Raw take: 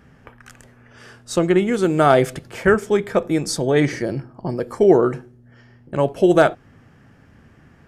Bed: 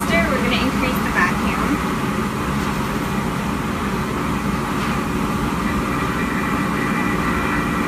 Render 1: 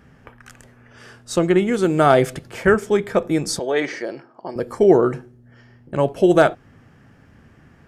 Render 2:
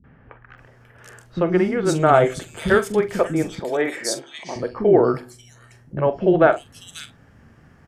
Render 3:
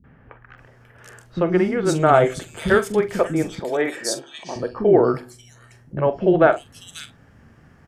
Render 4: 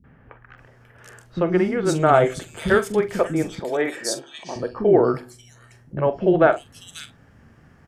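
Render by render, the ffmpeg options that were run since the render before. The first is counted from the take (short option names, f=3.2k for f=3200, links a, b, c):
-filter_complex "[0:a]asettb=1/sr,asplit=3[a][b][c];[a]atrim=end=3.594[d];[b]atrim=start=3.59:end=4.56,asetpts=PTS-STARTPTS,afade=t=in:d=0.004:c=qsin,afade=t=out:st=0.966:d=0.004:c=qsin,highpass=440,lowpass=5.7k[e];[c]atrim=start=4.556[f];[d][e]acrossfade=d=0.004:c1=hsin:c2=qsin[g];[g][f]acrossfade=d=0.004:c1=qsin:c2=hsin"
-filter_complex "[0:a]asplit=2[a][b];[b]adelay=44,volume=-12.5dB[c];[a][c]amix=inputs=2:normalize=0,acrossover=split=270|2800[d][e][f];[e]adelay=40[g];[f]adelay=580[h];[d][g][h]amix=inputs=3:normalize=0"
-filter_complex "[0:a]asettb=1/sr,asplit=3[a][b][c];[a]atrim=end=3.914[d];[b]atrim=start=3.91:end=4.89,asetpts=PTS-STARTPTS,afade=t=in:d=0.004:c=qsin,afade=t=out:st=0.976:d=0.004:c=qsin,asuperstop=centerf=2100:order=4:qfactor=5.7[e];[c]atrim=start=4.886[f];[d][e]acrossfade=d=0.004:c1=hsin:c2=qsin[g];[g][f]acrossfade=d=0.004:c1=qsin:c2=hsin"
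-af "volume=-1dB"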